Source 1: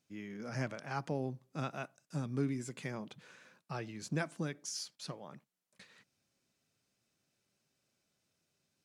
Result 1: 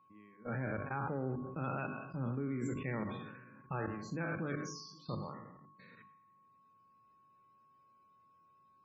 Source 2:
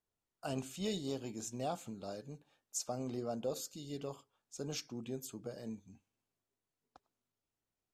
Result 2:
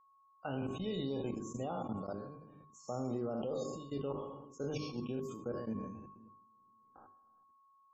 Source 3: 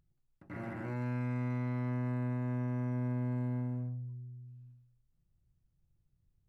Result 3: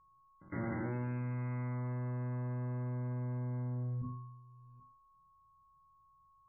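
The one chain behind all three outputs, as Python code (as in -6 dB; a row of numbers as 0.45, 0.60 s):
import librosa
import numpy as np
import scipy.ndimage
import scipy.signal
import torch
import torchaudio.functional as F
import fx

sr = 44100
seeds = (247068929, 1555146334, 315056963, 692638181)

y = fx.spec_trails(x, sr, decay_s=0.74)
y = fx.lowpass(y, sr, hz=1900.0, slope=6)
y = fx.echo_split(y, sr, split_hz=360.0, low_ms=264, high_ms=105, feedback_pct=52, wet_db=-15)
y = fx.level_steps(y, sr, step_db=21)
y = fx.spec_topn(y, sr, count=64)
y = fx.hum_notches(y, sr, base_hz=50, count=8)
y = y + 10.0 ** (-70.0 / 20.0) * np.sin(2.0 * np.pi * 1100.0 * np.arange(len(y)) / sr)
y = fx.peak_eq(y, sr, hz=680.0, db=-8.0, octaves=0.2)
y = fx.sustainer(y, sr, db_per_s=47.0)
y = y * librosa.db_to_amplitude(5.5)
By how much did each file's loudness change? +0.5, +1.5, -2.5 LU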